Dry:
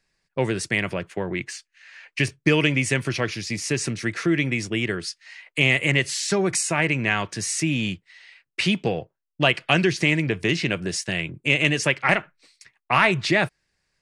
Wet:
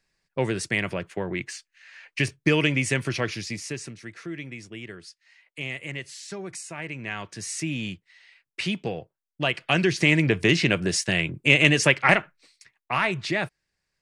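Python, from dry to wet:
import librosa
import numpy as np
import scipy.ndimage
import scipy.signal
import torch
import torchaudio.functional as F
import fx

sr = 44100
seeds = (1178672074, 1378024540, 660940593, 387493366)

y = fx.gain(x, sr, db=fx.line((3.41, -2.0), (3.98, -14.0), (6.77, -14.0), (7.53, -6.0), (9.45, -6.0), (10.24, 2.5), (11.99, 2.5), (12.92, -6.0)))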